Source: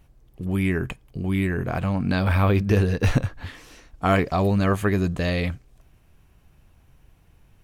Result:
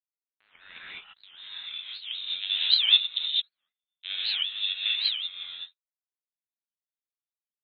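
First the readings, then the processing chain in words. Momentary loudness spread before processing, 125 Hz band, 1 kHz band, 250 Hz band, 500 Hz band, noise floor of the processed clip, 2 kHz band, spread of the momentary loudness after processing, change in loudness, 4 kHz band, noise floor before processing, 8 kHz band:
12 LU, below −40 dB, below −25 dB, below −40 dB, below −40 dB, below −85 dBFS, −7.5 dB, 22 LU, −2.0 dB, +16.5 dB, −58 dBFS, below −35 dB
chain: loose part that buzzes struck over −32 dBFS, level −26 dBFS
reverb reduction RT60 0.94 s
low-shelf EQ 190 Hz −9.5 dB
automatic gain control gain up to 8.5 dB
band-pass filter sweep 1,500 Hz → 350 Hz, 0:00.40–0:01.80
power curve on the samples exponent 2
reverb whose tail is shaped and stops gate 240 ms rising, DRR −8 dB
voice inversion scrambler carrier 3,900 Hz
wow of a warped record 78 rpm, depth 250 cents

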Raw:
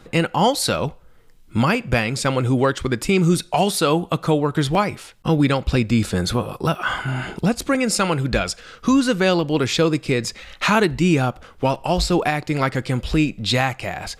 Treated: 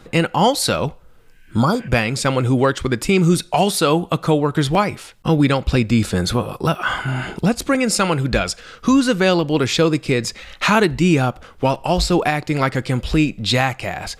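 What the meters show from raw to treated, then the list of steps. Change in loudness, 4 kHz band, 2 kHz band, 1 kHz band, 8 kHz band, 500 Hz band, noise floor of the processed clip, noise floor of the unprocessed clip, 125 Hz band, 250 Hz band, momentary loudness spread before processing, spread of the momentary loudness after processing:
+2.0 dB, +2.0 dB, +2.0 dB, +2.0 dB, +2.0 dB, +2.0 dB, −46 dBFS, −48 dBFS, +2.0 dB, +2.0 dB, 6 LU, 6 LU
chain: healed spectral selection 0:01.08–0:01.85, 1,500–3,200 Hz both
level +2 dB

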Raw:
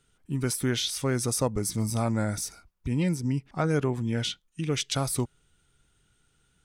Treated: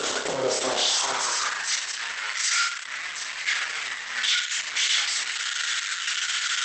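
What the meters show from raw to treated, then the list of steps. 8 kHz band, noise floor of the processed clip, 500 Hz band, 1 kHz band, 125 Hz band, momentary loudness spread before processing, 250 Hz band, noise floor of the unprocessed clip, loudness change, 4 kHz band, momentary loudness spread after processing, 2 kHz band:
+7.5 dB, −35 dBFS, −1.0 dB, +7.0 dB, below −20 dB, 7 LU, below −10 dB, −69 dBFS, +4.0 dB, +11.5 dB, 7 LU, +14.5 dB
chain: sign of each sample alone
notch filter 2,500 Hz, Q 13
high-pass filter sweep 480 Hz → 1,900 Hz, 0:00.60–0:01.67
mains-hum notches 60/120/180 Hz
on a send: flutter between parallel walls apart 5.2 metres, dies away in 0.69 s
on the sum: level +4 dB
Opus 10 kbit/s 48,000 Hz

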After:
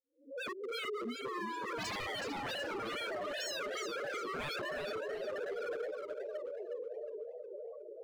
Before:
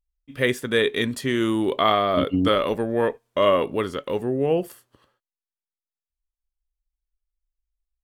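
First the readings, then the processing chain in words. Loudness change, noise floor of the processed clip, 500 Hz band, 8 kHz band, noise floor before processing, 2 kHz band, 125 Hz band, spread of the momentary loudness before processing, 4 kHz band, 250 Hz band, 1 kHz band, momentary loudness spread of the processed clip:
−17.0 dB, −50 dBFS, −15.0 dB, can't be measured, below −85 dBFS, −10.0 dB, −23.0 dB, 6 LU, −11.5 dB, −21.0 dB, −14.5 dB, 6 LU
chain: peak hold with a rise ahead of every peak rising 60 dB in 0.34 s
Chebyshev band-pass filter 390–7,400 Hz, order 2
feedback delay with all-pass diffusion 1,120 ms, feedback 52%, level −5 dB
spectral peaks only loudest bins 2
wave folding −32.5 dBFS
feedback echo with a swinging delay time 367 ms, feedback 39%, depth 168 cents, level −6 dB
level −3 dB

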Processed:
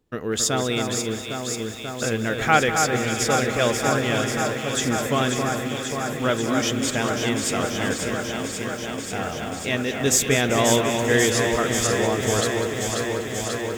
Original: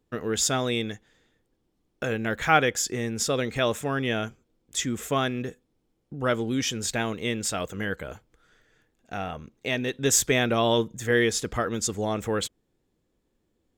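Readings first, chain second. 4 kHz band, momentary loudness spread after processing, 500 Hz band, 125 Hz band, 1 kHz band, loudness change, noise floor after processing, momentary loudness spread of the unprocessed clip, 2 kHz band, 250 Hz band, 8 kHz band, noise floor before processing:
+5.0 dB, 9 LU, +5.0 dB, +5.5 dB, +5.0 dB, +4.0 dB, −32 dBFS, 13 LU, +5.0 dB, +5.0 dB, +4.5 dB, −74 dBFS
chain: on a send: delay that swaps between a low-pass and a high-pass 269 ms, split 2,200 Hz, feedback 90%, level −5 dB
on the sum: feedback echo at a low word length 195 ms, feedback 80%, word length 7 bits, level −12.5 dB
level +2 dB

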